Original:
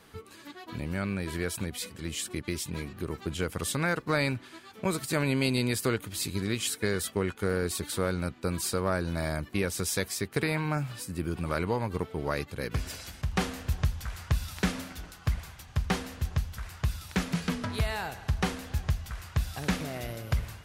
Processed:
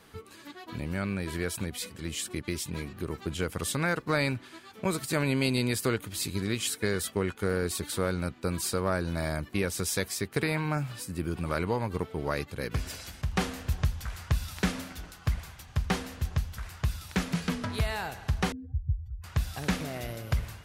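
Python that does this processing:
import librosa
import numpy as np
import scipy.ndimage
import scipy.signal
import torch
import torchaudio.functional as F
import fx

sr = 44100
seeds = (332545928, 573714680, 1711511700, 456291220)

y = fx.spec_expand(x, sr, power=3.6, at=(18.52, 19.24))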